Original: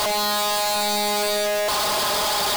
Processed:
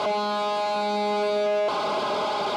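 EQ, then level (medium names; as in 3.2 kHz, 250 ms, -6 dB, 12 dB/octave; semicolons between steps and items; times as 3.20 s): band-pass 230–3100 Hz; Butterworth band-stop 1.8 kHz, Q 5.3; tilt shelf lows +5.5 dB, about 640 Hz; 0.0 dB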